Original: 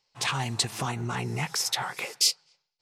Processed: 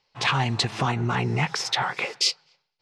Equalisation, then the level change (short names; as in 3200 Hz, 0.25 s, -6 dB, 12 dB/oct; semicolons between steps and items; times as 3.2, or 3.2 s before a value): LPF 3900 Hz 12 dB/oct; +6.5 dB